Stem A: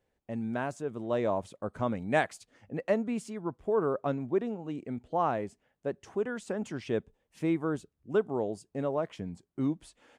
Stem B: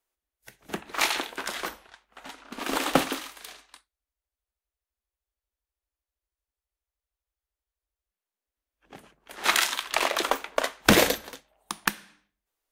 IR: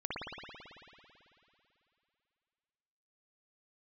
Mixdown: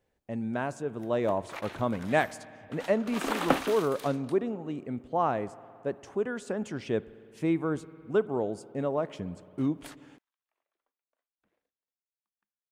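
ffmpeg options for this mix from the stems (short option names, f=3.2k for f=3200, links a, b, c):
-filter_complex "[0:a]volume=1dB,asplit=3[a][b][c];[b]volume=-22dB[d];[1:a]acrossover=split=2600[e][f];[f]acompressor=threshold=-38dB:ratio=4:attack=1:release=60[g];[e][g]amix=inputs=2:normalize=0,adelay=550,volume=-2dB,afade=t=in:st=2.1:d=0.72:silence=0.266073[h];[c]apad=whole_len=585205[i];[h][i]sidechaingate=range=-58dB:threshold=-50dB:ratio=16:detection=peak[j];[2:a]atrim=start_sample=2205[k];[d][k]afir=irnorm=-1:irlink=0[l];[a][j][l]amix=inputs=3:normalize=0"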